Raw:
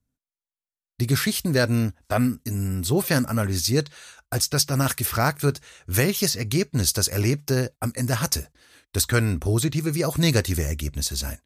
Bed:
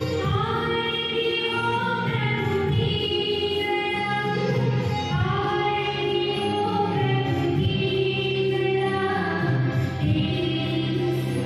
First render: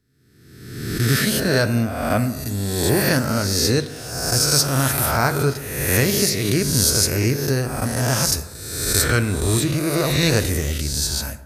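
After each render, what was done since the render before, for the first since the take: reverse spectral sustain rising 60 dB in 1.17 s; plate-style reverb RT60 1 s, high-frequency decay 0.45×, DRR 10 dB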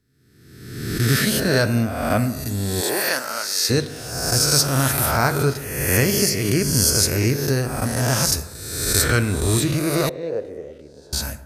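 2.80–3.69 s: high-pass 410 Hz -> 1.2 kHz; 5.64–6.99 s: Butterworth band-stop 3.8 kHz, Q 4.5; 10.09–11.13 s: band-pass filter 500 Hz, Q 3.6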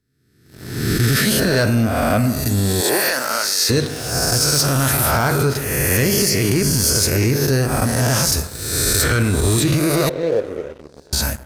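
waveshaping leveller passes 2; peak limiter -9 dBFS, peak gain reduction 7.5 dB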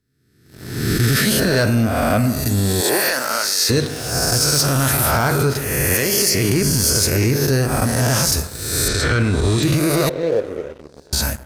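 5.94–6.35 s: tone controls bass -10 dB, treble +2 dB; 8.88–9.63 s: low-pass 5.4 kHz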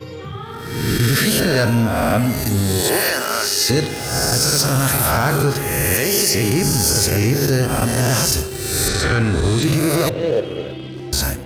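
add bed -7 dB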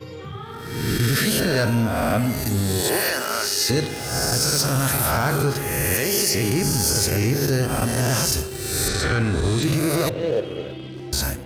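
trim -4 dB

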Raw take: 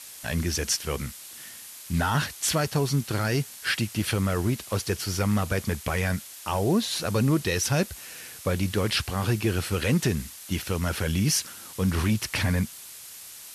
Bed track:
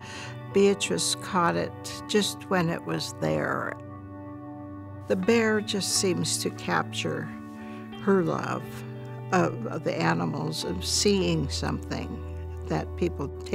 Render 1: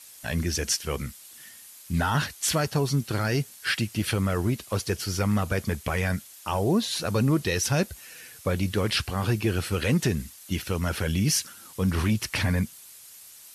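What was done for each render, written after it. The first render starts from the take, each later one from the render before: noise reduction 7 dB, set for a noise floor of -44 dBFS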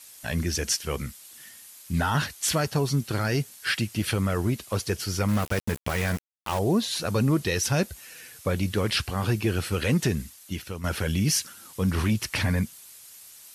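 5.28–6.59 s: small samples zeroed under -29.5 dBFS; 10.17–10.84 s: fade out, to -9.5 dB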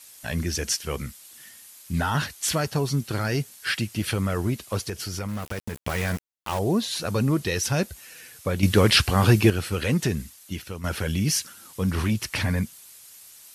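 4.89–5.77 s: compression 3:1, threshold -28 dBFS; 8.63–9.50 s: gain +8 dB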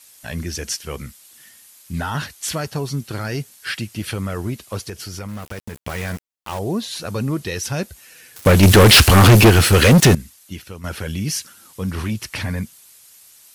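8.36–10.15 s: waveshaping leveller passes 5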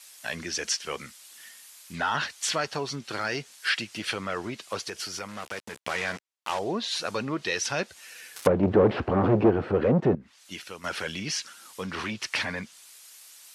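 low-pass that closes with the level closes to 490 Hz, closed at -10.5 dBFS; frequency weighting A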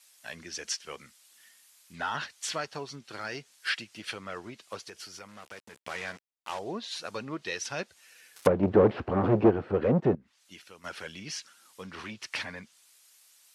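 upward expansion 1.5:1, over -36 dBFS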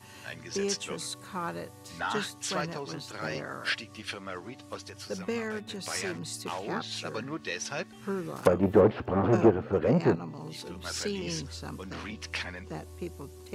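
add bed track -11 dB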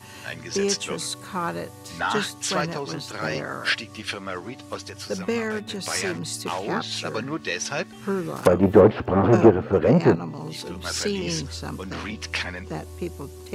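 trim +7 dB; peak limiter -3 dBFS, peak gain reduction 2.5 dB

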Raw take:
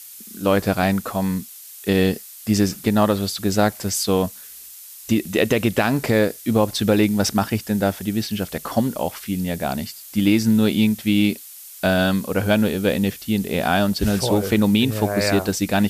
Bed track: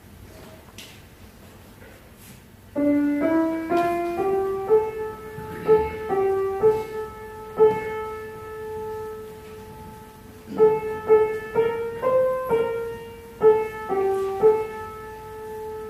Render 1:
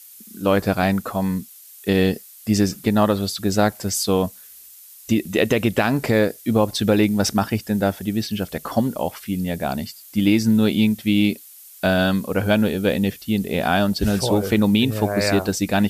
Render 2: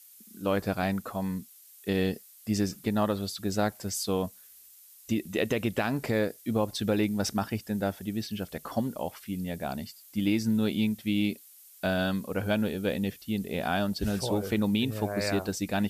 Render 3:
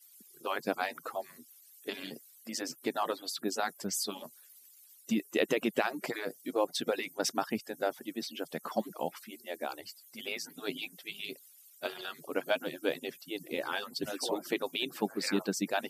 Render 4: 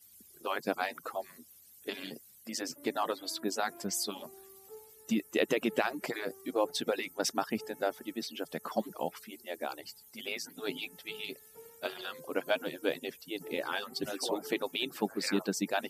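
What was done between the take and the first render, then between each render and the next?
noise reduction 6 dB, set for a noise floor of -40 dBFS
trim -9.5 dB
harmonic-percussive separation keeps percussive; high-pass 170 Hz 24 dB/octave
add bed track -32.5 dB

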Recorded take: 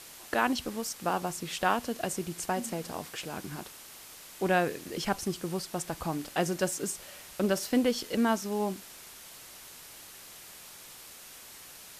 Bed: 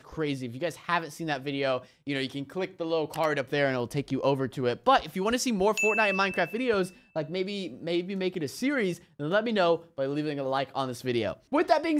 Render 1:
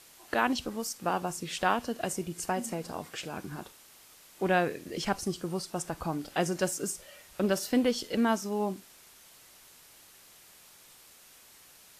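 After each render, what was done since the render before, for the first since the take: noise print and reduce 7 dB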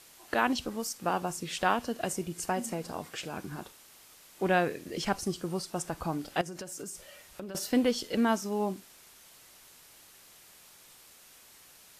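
6.41–7.55 s: compression 16:1, threshold -36 dBFS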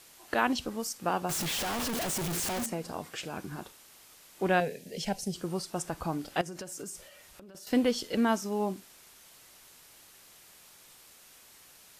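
1.29–2.66 s: one-bit comparator; 4.60–5.35 s: static phaser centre 320 Hz, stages 6; 7.07–7.67 s: compression 3:1, threshold -50 dBFS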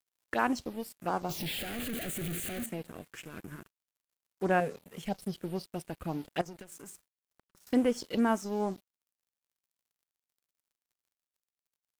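touch-sensitive phaser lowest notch 420 Hz, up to 4.2 kHz, full sweep at -23.5 dBFS; crossover distortion -48.5 dBFS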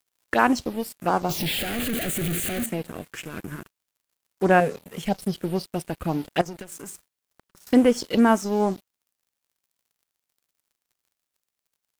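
trim +9.5 dB

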